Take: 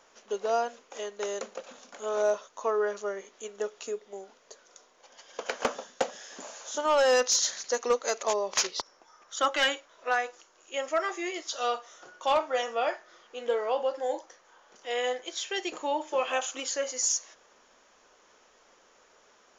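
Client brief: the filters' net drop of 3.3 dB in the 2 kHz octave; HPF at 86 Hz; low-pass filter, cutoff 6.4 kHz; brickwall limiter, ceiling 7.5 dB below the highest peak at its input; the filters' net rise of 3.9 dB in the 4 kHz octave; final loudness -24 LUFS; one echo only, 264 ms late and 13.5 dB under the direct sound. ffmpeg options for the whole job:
-af "highpass=86,lowpass=6400,equalizer=f=2000:t=o:g=-6.5,equalizer=f=4000:t=o:g=8.5,alimiter=limit=0.106:level=0:latency=1,aecho=1:1:264:0.211,volume=2.37"

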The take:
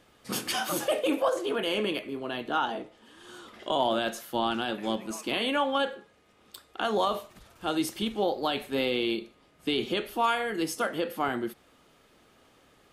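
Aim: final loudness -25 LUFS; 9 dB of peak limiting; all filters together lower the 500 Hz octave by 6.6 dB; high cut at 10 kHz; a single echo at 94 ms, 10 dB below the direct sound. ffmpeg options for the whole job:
-af "lowpass=10000,equalizer=f=500:t=o:g=-8.5,alimiter=level_in=1.12:limit=0.0631:level=0:latency=1,volume=0.891,aecho=1:1:94:0.316,volume=3.35"

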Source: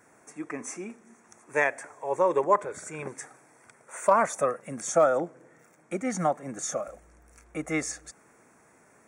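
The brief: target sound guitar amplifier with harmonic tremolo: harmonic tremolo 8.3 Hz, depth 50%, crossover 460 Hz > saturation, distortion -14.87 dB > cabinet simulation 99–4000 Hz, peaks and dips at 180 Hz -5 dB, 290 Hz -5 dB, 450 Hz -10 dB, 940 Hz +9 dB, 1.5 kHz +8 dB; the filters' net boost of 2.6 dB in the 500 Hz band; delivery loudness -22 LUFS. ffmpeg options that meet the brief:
-filter_complex "[0:a]equalizer=f=500:t=o:g=6,acrossover=split=460[s0][s1];[s0]aeval=exprs='val(0)*(1-0.5/2+0.5/2*cos(2*PI*8.3*n/s))':c=same[s2];[s1]aeval=exprs='val(0)*(1-0.5/2-0.5/2*cos(2*PI*8.3*n/s))':c=same[s3];[s2][s3]amix=inputs=2:normalize=0,asoftclip=threshold=0.168,highpass=99,equalizer=f=180:t=q:w=4:g=-5,equalizer=f=290:t=q:w=4:g=-5,equalizer=f=450:t=q:w=4:g=-10,equalizer=f=940:t=q:w=4:g=9,equalizer=f=1500:t=q:w=4:g=8,lowpass=f=4000:w=0.5412,lowpass=f=4000:w=1.3066,volume=2"

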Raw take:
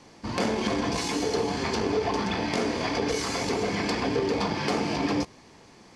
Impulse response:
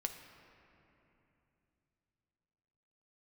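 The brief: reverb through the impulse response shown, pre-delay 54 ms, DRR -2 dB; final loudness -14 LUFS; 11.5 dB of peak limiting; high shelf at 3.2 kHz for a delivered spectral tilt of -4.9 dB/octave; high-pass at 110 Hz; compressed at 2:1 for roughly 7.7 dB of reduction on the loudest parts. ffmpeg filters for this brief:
-filter_complex "[0:a]highpass=110,highshelf=f=3200:g=-5,acompressor=threshold=0.0141:ratio=2,alimiter=level_in=2.66:limit=0.0631:level=0:latency=1,volume=0.376,asplit=2[s0][s1];[1:a]atrim=start_sample=2205,adelay=54[s2];[s1][s2]afir=irnorm=-1:irlink=0,volume=1.26[s3];[s0][s3]amix=inputs=2:normalize=0,volume=13.3"

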